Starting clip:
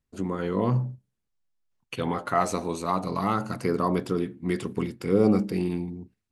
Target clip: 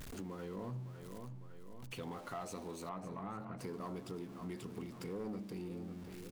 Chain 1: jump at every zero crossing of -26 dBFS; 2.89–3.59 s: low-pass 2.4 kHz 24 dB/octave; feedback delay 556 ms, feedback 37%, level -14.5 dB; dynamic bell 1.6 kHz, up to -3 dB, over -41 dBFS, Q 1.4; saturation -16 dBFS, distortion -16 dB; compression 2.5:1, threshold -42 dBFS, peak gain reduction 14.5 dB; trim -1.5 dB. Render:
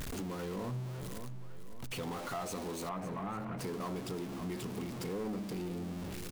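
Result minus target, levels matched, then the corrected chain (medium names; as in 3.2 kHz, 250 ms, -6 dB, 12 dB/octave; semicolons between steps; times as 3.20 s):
jump at every zero crossing: distortion +9 dB; compression: peak gain reduction -3.5 dB
jump at every zero crossing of -36.5 dBFS; 2.89–3.59 s: low-pass 2.4 kHz 24 dB/octave; feedback delay 556 ms, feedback 37%, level -14.5 dB; dynamic bell 1.6 kHz, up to -3 dB, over -41 dBFS, Q 1.4; saturation -16 dBFS, distortion -16 dB; compression 2.5:1, threshold -48.5 dBFS, peak gain reduction 18.5 dB; trim -1.5 dB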